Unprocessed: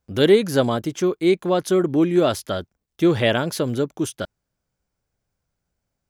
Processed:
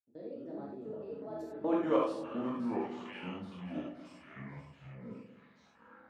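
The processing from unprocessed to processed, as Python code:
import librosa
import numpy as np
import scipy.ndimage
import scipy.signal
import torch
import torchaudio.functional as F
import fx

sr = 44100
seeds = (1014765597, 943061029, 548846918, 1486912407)

y = fx.doppler_pass(x, sr, speed_mps=56, closest_m=7.1, pass_at_s=1.73)
y = fx.level_steps(y, sr, step_db=22)
y = fx.filter_sweep_bandpass(y, sr, from_hz=320.0, to_hz=4300.0, start_s=0.3, end_s=3.98, q=1.5)
y = fx.echo_pitch(y, sr, ms=152, semitones=-5, count=3, db_per_echo=-6.0)
y = fx.echo_split(y, sr, split_hz=950.0, low_ms=131, high_ms=529, feedback_pct=52, wet_db=-10.5)
y = fx.rev_gated(y, sr, seeds[0], gate_ms=120, shape='flat', drr_db=-4.5)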